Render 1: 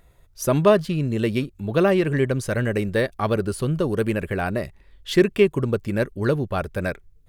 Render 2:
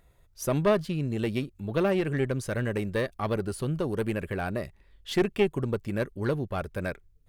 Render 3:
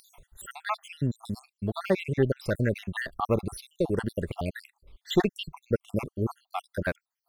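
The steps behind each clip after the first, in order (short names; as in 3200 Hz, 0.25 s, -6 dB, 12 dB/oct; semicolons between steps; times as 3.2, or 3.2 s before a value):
one diode to ground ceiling -14.5 dBFS; gain -5.5 dB
random spectral dropouts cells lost 66%; upward compressor, threshold -50 dBFS; gain +4.5 dB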